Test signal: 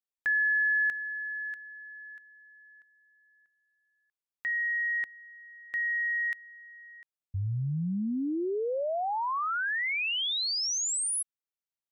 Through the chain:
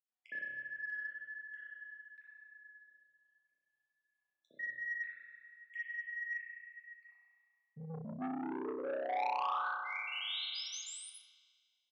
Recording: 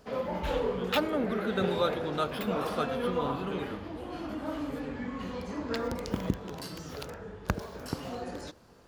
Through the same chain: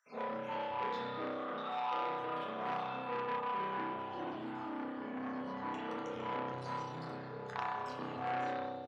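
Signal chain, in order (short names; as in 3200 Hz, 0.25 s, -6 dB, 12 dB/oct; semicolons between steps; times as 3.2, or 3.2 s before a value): random spectral dropouts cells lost 54%; compressor 3:1, threshold -35 dBFS; notches 60/120/180 Hz; spring tank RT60 1.8 s, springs 31 ms, chirp 80 ms, DRR -8 dB; dynamic EQ 1000 Hz, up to +6 dB, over -45 dBFS, Q 2; vocal rider within 3 dB 0.5 s; HPF 110 Hz 24 dB/oct; air absorption 88 m; resonator bank E2 sus4, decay 0.27 s; three bands offset in time highs, mids, lows 60/230 ms, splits 160/1600 Hz; core saturation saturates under 1500 Hz; gain +5 dB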